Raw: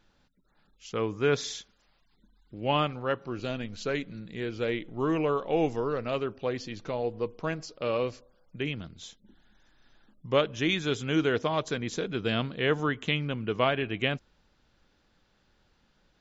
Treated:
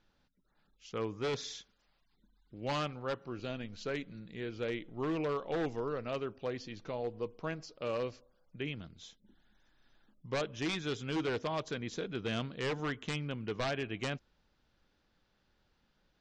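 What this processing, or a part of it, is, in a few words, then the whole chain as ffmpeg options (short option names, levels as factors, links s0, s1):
synthesiser wavefolder: -af "aeval=exprs='0.0891*(abs(mod(val(0)/0.0891+3,4)-2)-1)':c=same,lowpass=f=6800:w=0.5412,lowpass=f=6800:w=1.3066,volume=0.473"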